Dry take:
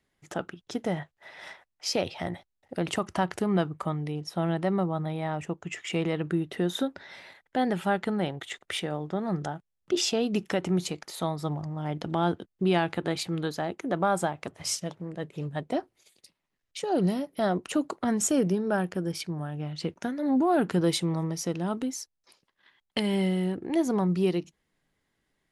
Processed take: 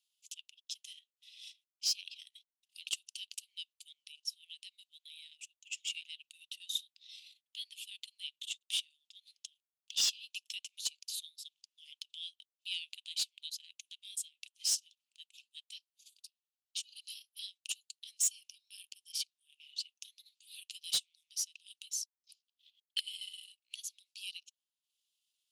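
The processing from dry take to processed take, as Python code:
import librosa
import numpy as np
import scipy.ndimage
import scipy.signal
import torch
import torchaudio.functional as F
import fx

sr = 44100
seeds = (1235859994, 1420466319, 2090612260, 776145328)

y = scipy.signal.sosfilt(scipy.signal.butter(12, 2700.0, 'highpass', fs=sr, output='sos'), x)
y = fx.transient(y, sr, attack_db=1, sustain_db=-11)
y = 10.0 ** (-24.0 / 20.0) * np.tanh(y / 10.0 ** (-24.0 / 20.0))
y = F.gain(torch.from_numpy(y), 1.0).numpy()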